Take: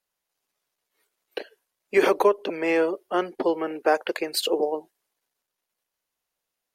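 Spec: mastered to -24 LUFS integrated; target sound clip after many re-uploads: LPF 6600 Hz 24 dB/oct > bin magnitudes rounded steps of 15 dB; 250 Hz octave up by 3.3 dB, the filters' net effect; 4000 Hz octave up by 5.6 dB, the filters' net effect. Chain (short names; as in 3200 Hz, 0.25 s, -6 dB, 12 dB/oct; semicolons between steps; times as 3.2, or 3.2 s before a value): LPF 6600 Hz 24 dB/oct; bell 250 Hz +5.5 dB; bell 4000 Hz +7 dB; bin magnitudes rounded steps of 15 dB; gain -1 dB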